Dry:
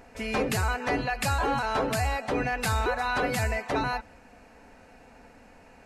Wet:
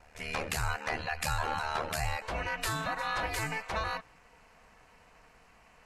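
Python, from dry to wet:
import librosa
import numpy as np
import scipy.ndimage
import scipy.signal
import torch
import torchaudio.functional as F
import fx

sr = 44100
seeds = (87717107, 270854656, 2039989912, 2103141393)

y = fx.ring_mod(x, sr, carrier_hz=fx.steps((0.0, 38.0), (2.22, 220.0)))
y = fx.peak_eq(y, sr, hz=280.0, db=-13.0, octaves=1.8)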